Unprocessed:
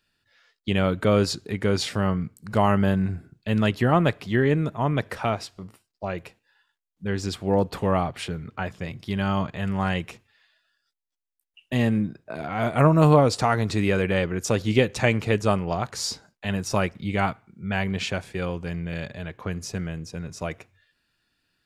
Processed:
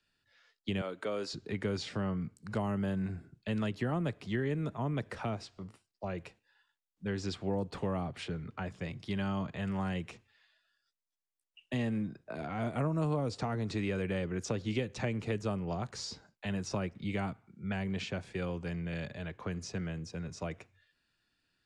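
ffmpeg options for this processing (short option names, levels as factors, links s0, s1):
-filter_complex "[0:a]asettb=1/sr,asplit=3[s0][s1][s2];[s0]atrim=end=0.814[s3];[s1]atrim=start=0.81:end=1.33,asetpts=PTS-STARTPTS,afade=t=in:d=0.004:c=qsin,afade=t=out:st=0.516:d=0.004:c=qsin,highpass=480[s4];[s2]atrim=start=1.326[s5];[s3][s4]acrossfade=d=0.004:c1=hsin:c2=qsin[s6];[s6][s5]acrossfade=d=0.004:c1=qsin:c2=hsin,lowpass=f=9400:w=0.5412,lowpass=f=9400:w=1.3066,acrossover=split=91|190|430|6900[s7][s8][s9][s10][s11];[s7]acompressor=threshold=0.00562:ratio=4[s12];[s8]acompressor=threshold=0.0224:ratio=4[s13];[s9]acompressor=threshold=0.0282:ratio=4[s14];[s10]acompressor=threshold=0.02:ratio=4[s15];[s11]acompressor=threshold=0.00112:ratio=4[s16];[s12][s13][s14][s15][s16]amix=inputs=5:normalize=0,volume=0.531"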